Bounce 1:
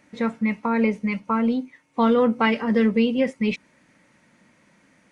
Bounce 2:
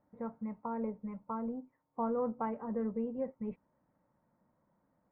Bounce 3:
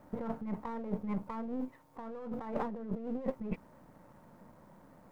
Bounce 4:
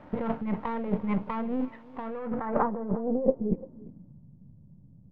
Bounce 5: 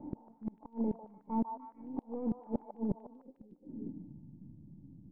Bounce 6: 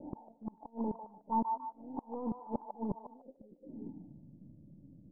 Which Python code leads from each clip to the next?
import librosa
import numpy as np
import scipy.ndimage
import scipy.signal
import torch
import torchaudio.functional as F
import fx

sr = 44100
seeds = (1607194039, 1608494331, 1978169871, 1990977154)

y1 = scipy.signal.sosfilt(scipy.signal.butter(4, 1000.0, 'lowpass', fs=sr, output='sos'), x)
y1 = fx.peak_eq(y1, sr, hz=280.0, db=-9.5, octaves=2.2)
y1 = y1 * librosa.db_to_amplitude(-8.0)
y2 = np.where(y1 < 0.0, 10.0 ** (-7.0 / 20.0) * y1, y1)
y2 = fx.over_compress(y2, sr, threshold_db=-49.0, ratio=-1.0)
y2 = y2 * librosa.db_to_amplitude(11.0)
y3 = fx.filter_sweep_lowpass(y2, sr, from_hz=2900.0, to_hz=130.0, start_s=2.03, end_s=4.29, q=1.9)
y3 = y3 + 10.0 ** (-20.5 / 20.0) * np.pad(y3, (int(345 * sr / 1000.0), 0))[:len(y3)]
y3 = y3 * librosa.db_to_amplitude(7.5)
y4 = fx.formant_cascade(y3, sr, vowel='u')
y4 = fx.gate_flip(y4, sr, shuts_db=-34.0, range_db=-32)
y4 = fx.echo_stepped(y4, sr, ms=149, hz=870.0, octaves=0.7, feedback_pct=70, wet_db=-2.5)
y4 = y4 * librosa.db_to_amplitude(11.5)
y5 = fx.envelope_lowpass(y4, sr, base_hz=500.0, top_hz=1000.0, q=4.5, full_db=-36.5, direction='up')
y5 = y5 * librosa.db_to_amplitude(-3.5)